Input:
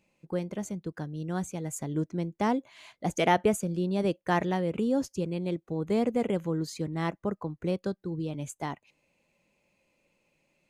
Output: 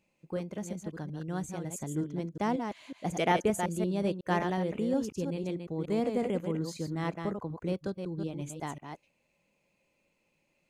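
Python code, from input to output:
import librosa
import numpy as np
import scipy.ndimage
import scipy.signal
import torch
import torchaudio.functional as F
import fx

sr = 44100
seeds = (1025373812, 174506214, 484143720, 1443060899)

y = fx.reverse_delay(x, sr, ms=183, wet_db=-6.0)
y = F.gain(torch.from_numpy(y), -3.5).numpy()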